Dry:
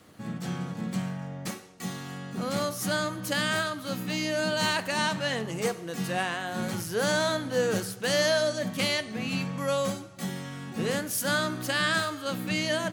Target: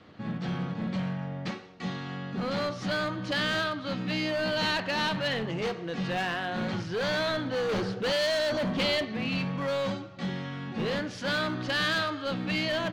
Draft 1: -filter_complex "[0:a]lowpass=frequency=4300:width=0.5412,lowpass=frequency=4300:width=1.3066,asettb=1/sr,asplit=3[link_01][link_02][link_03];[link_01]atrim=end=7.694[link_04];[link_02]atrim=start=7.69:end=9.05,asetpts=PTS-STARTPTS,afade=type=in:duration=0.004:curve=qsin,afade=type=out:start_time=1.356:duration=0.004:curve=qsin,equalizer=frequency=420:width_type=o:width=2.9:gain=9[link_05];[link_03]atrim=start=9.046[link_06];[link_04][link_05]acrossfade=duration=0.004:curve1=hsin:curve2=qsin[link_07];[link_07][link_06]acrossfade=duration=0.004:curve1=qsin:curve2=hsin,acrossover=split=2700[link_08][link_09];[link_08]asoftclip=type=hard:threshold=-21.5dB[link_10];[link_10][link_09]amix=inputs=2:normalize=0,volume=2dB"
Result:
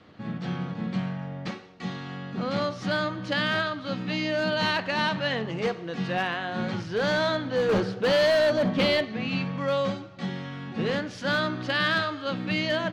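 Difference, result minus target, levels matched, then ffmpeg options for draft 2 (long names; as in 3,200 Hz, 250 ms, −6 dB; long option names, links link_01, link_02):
hard clipping: distortion −5 dB
-filter_complex "[0:a]lowpass=frequency=4300:width=0.5412,lowpass=frequency=4300:width=1.3066,asettb=1/sr,asplit=3[link_01][link_02][link_03];[link_01]atrim=end=7.694[link_04];[link_02]atrim=start=7.69:end=9.05,asetpts=PTS-STARTPTS,afade=type=in:duration=0.004:curve=qsin,afade=type=out:start_time=1.356:duration=0.004:curve=qsin,equalizer=frequency=420:width_type=o:width=2.9:gain=9[link_05];[link_03]atrim=start=9.046[link_06];[link_04][link_05]acrossfade=duration=0.004:curve1=hsin:curve2=qsin[link_07];[link_07][link_06]acrossfade=duration=0.004:curve1=qsin:curve2=hsin,acrossover=split=2700[link_08][link_09];[link_08]asoftclip=type=hard:threshold=-29dB[link_10];[link_10][link_09]amix=inputs=2:normalize=0,volume=2dB"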